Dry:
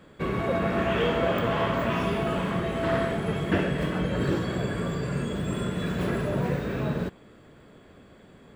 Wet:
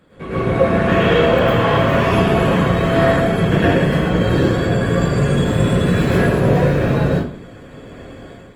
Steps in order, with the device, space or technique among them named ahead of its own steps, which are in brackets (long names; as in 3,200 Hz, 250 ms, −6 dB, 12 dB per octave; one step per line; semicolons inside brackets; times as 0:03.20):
speakerphone in a meeting room (convolution reverb RT60 0.45 s, pre-delay 98 ms, DRR −7 dB; automatic gain control gain up to 9 dB; level −1 dB; Opus 24 kbit/s 48,000 Hz)